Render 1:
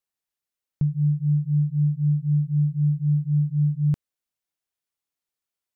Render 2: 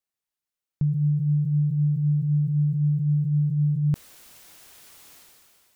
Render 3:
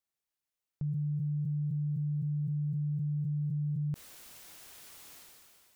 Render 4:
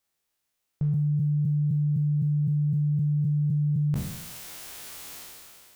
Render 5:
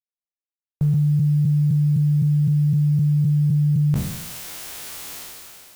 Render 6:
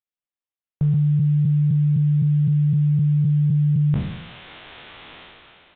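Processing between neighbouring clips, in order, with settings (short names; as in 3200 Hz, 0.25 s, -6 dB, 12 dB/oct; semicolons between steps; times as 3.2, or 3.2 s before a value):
sustainer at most 24 dB/s; gain -1.5 dB
limiter -27 dBFS, peak gain reduction 10.5 dB; gain -2 dB
spectral trails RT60 0.85 s; gain +8 dB
bit-crush 9-bit; gain +6.5 dB
downsampling 8000 Hz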